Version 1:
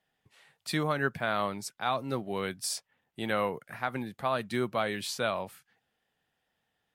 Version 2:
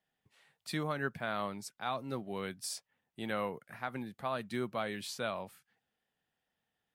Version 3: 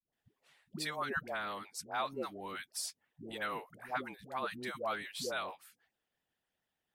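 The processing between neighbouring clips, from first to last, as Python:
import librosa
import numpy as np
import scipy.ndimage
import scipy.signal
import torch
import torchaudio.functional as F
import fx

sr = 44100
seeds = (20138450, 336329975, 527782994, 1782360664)

y1 = fx.peak_eq(x, sr, hz=210.0, db=2.5, octaves=0.77)
y1 = y1 * 10.0 ** (-6.5 / 20.0)
y2 = fx.hpss(y1, sr, part='harmonic', gain_db=-15)
y2 = fx.dispersion(y2, sr, late='highs', ms=128.0, hz=500.0)
y2 = y2 * 10.0 ** (3.0 / 20.0)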